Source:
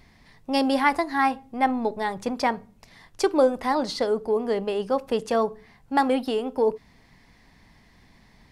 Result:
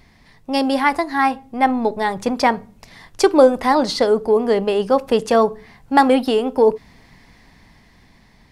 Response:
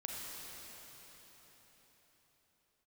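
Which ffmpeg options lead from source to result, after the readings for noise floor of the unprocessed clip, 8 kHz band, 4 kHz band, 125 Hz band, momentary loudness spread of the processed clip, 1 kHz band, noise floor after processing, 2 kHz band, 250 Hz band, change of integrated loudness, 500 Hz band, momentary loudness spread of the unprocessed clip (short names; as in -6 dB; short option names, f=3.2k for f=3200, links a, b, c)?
-57 dBFS, +7.5 dB, +7.0 dB, n/a, 8 LU, +6.5 dB, -52 dBFS, +6.0 dB, +7.0 dB, +7.0 dB, +8.0 dB, 6 LU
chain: -af "dynaudnorm=f=460:g=7:m=5dB,volume=3.5dB"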